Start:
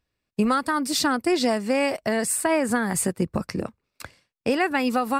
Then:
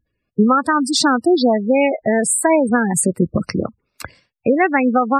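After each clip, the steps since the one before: spectral gate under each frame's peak -15 dB strong; trim +8 dB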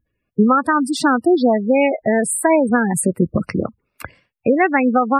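high-order bell 5.4 kHz -10.5 dB 1.3 oct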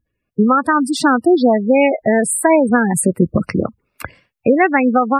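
level rider; trim -1 dB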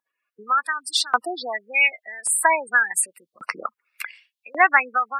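LFO high-pass saw up 0.88 Hz 910–4300 Hz; trim -2 dB

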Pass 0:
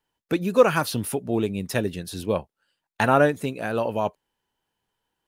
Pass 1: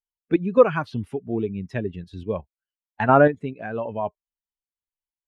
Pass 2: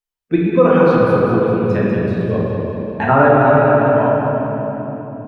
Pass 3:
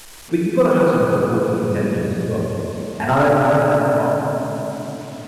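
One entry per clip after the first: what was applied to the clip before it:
expander on every frequency bin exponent 1.5; low-pass 1.9 kHz 12 dB/octave; in parallel at +1.5 dB: level held to a coarse grid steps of 22 dB
on a send: feedback delay 197 ms, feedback 57%, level -7 dB; on the sum: simulated room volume 200 m³, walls hard, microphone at 0.94 m; loudness maximiser +3 dB; trim -1 dB
one-bit delta coder 64 kbps, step -29.5 dBFS; trim -3.5 dB

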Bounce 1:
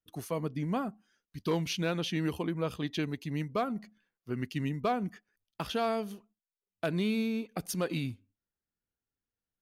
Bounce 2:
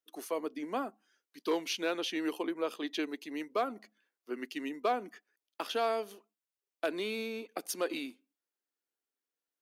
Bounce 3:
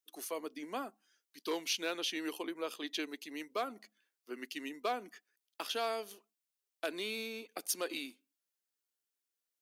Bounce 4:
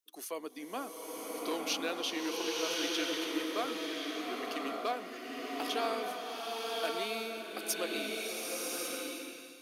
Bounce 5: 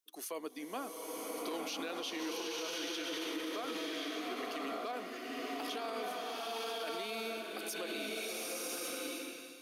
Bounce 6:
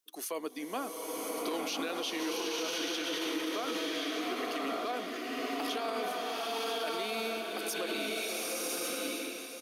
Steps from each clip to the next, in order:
steep high-pass 280 Hz 36 dB/octave
treble shelf 2.3 kHz +10 dB; trim -6 dB
swelling reverb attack 1110 ms, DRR -2.5 dB
peak limiter -30.5 dBFS, peak gain reduction 10.5 dB
delay 1014 ms -11 dB; trim +4.5 dB

